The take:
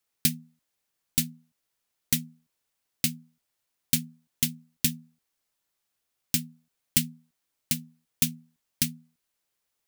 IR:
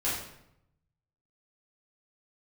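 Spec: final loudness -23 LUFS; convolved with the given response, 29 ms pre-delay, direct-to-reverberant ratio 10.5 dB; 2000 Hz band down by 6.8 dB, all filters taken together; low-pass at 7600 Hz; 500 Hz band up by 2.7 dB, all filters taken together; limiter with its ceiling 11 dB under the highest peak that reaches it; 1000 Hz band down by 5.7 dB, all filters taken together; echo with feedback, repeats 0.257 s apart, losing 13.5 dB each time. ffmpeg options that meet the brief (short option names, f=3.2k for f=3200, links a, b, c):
-filter_complex "[0:a]lowpass=7.6k,equalizer=f=500:t=o:g=5.5,equalizer=f=1k:t=o:g=-7,equalizer=f=2k:t=o:g=-8,alimiter=limit=-20.5dB:level=0:latency=1,aecho=1:1:257|514:0.211|0.0444,asplit=2[a][b];[1:a]atrim=start_sample=2205,adelay=29[c];[b][c]afir=irnorm=-1:irlink=0,volume=-18.5dB[d];[a][d]amix=inputs=2:normalize=0,volume=17dB"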